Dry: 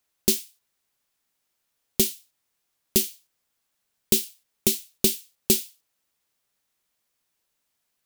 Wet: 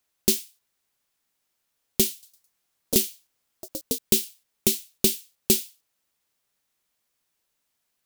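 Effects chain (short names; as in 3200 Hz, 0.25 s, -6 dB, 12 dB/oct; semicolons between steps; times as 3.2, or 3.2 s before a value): 2.12–4.21 echoes that change speed 0.107 s, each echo +3 st, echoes 3, each echo -6 dB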